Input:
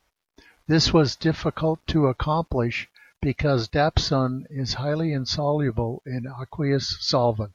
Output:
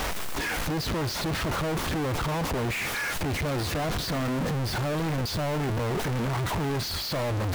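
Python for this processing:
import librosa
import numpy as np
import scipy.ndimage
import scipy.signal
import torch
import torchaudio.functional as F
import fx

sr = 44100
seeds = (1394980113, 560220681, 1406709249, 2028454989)

y = np.sign(x) * np.sqrt(np.mean(np.square(x)))
y = fx.high_shelf(y, sr, hz=3100.0, db=-8.0)
y = y * librosa.db_to_amplitude(-3.0)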